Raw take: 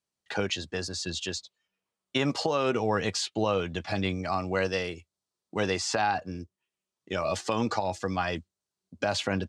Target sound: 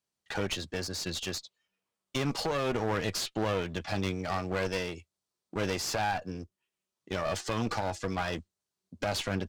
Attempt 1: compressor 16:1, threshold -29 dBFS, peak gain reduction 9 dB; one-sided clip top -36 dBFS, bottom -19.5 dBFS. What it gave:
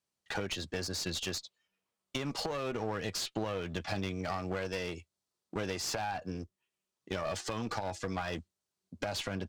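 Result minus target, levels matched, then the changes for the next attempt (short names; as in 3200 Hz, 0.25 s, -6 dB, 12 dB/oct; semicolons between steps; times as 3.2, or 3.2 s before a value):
compressor: peak gain reduction +9 dB
remove: compressor 16:1, threshold -29 dBFS, peak gain reduction 9 dB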